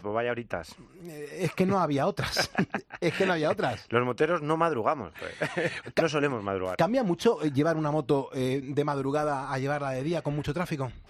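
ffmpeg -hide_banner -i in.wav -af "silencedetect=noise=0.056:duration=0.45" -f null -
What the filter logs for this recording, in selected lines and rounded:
silence_start: 0.60
silence_end: 1.41 | silence_duration: 0.81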